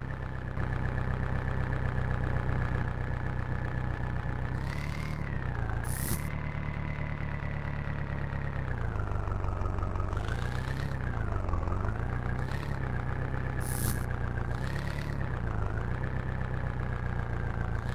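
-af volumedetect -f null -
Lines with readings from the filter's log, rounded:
mean_volume: -31.6 dB
max_volume: -15.6 dB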